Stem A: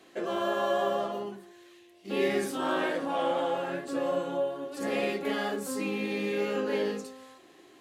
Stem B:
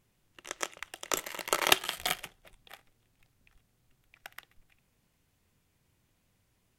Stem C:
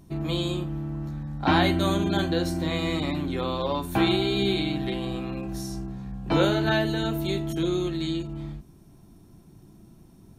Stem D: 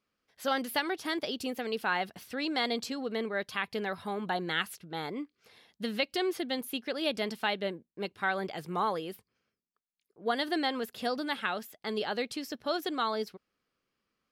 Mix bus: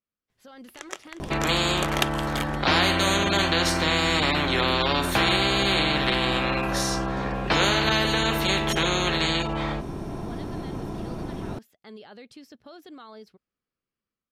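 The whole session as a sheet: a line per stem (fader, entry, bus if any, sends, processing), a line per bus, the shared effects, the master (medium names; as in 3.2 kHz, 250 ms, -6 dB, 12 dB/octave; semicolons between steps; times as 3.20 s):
-14.0 dB, 2.35 s, no send, no echo send, low-pass 3.5 kHz 12 dB/octave
-6.0 dB, 0.30 s, no send, echo send -16 dB, none
-3.5 dB, 1.20 s, no send, no echo send, low-pass 1.5 kHz 6 dB/octave; spectrum-flattening compressor 4:1
-15.0 dB, 0.00 s, no send, no echo send, peak limiter -27.5 dBFS, peak gain reduction 11.5 dB; bass shelf 200 Hz +8.5 dB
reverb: none
echo: delay 356 ms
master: treble shelf 12 kHz -11 dB; level rider gain up to 5 dB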